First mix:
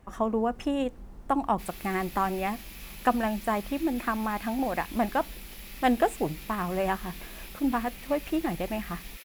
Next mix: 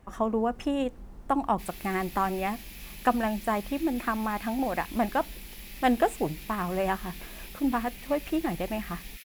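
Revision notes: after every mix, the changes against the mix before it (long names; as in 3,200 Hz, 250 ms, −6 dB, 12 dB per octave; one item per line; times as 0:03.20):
background: add flat-topped bell 610 Hz −12.5 dB 2.3 octaves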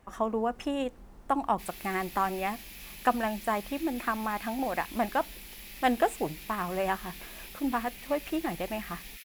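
master: add low-shelf EQ 330 Hz −6.5 dB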